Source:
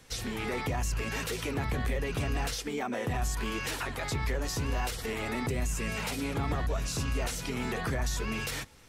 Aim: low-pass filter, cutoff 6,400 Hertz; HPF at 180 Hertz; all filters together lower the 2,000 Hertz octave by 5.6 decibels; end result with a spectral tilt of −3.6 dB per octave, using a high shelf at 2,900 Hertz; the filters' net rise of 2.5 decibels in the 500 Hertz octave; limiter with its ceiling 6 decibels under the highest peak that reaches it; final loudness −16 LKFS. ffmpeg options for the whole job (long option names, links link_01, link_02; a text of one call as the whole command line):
ffmpeg -i in.wav -af "highpass=180,lowpass=6400,equalizer=frequency=500:width_type=o:gain=3.5,equalizer=frequency=2000:width_type=o:gain=-9,highshelf=frequency=2900:gain=4,volume=20.5dB,alimiter=limit=-6.5dB:level=0:latency=1" out.wav